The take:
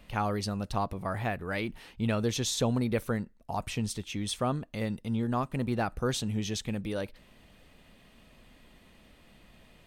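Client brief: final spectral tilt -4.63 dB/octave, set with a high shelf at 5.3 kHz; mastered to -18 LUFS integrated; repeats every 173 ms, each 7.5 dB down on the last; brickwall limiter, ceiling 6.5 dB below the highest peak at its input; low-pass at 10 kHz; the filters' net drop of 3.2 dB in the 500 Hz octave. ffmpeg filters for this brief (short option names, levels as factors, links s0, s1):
-af "lowpass=10000,equalizer=f=500:t=o:g=-4,highshelf=f=5300:g=3,alimiter=limit=0.0708:level=0:latency=1,aecho=1:1:173|346|519|692|865:0.422|0.177|0.0744|0.0312|0.0131,volume=5.96"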